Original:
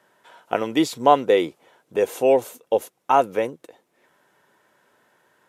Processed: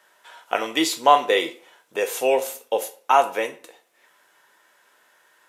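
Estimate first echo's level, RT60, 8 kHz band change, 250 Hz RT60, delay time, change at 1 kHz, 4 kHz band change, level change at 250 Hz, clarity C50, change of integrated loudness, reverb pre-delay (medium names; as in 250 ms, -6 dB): no echo, 0.45 s, +7.0 dB, 0.45 s, no echo, +1.5 dB, +6.5 dB, -5.0 dB, 13.5 dB, -0.5 dB, 6 ms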